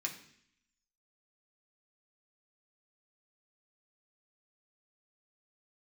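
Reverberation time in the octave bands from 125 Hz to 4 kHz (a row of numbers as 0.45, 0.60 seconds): 0.80, 0.85, 0.65, 0.65, 0.80, 0.80 seconds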